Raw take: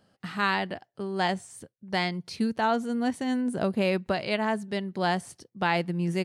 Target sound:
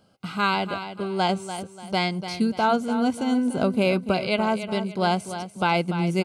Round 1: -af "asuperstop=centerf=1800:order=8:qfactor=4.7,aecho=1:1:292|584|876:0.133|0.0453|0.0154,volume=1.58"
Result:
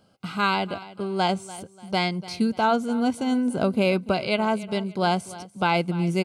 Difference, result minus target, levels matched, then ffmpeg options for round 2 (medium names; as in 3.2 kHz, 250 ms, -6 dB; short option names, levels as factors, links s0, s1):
echo-to-direct -7 dB
-af "asuperstop=centerf=1800:order=8:qfactor=4.7,aecho=1:1:292|584|876|1168:0.299|0.102|0.0345|0.0117,volume=1.58"